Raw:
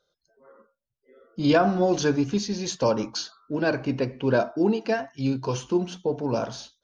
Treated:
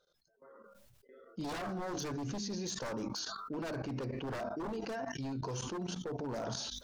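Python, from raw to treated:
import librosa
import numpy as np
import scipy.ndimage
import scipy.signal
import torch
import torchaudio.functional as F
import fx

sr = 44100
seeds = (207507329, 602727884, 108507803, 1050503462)

y = 10.0 ** (-20.5 / 20.0) * (np.abs((x / 10.0 ** (-20.5 / 20.0) + 3.0) % 4.0 - 2.0) - 1.0)
y = fx.hum_notches(y, sr, base_hz=50, count=5)
y = fx.level_steps(y, sr, step_db=19)
y = fx.dynamic_eq(y, sr, hz=2700.0, q=1.2, threshold_db=-56.0, ratio=4.0, max_db=-6)
y = fx.sustainer(y, sr, db_per_s=24.0)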